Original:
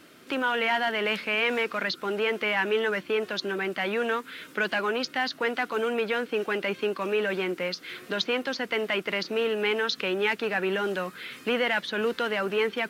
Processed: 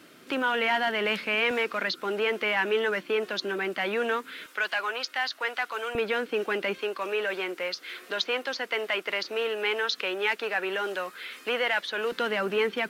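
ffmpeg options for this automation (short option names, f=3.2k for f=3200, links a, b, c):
-af "asetnsamples=n=441:p=0,asendcmd='1.51 highpass f 210;4.46 highpass f 730;5.95 highpass f 210;6.78 highpass f 440;12.12 highpass f 120',highpass=91"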